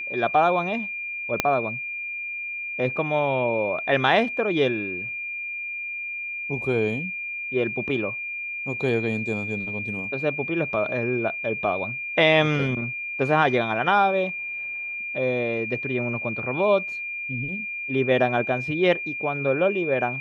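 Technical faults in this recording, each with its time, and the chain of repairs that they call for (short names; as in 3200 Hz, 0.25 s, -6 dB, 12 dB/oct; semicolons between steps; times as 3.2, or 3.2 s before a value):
tone 2400 Hz -29 dBFS
1.4 pop -4 dBFS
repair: de-click; notch 2400 Hz, Q 30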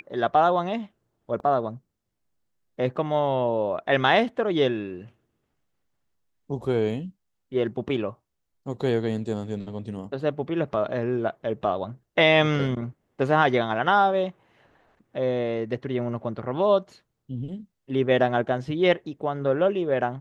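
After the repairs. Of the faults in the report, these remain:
1.4 pop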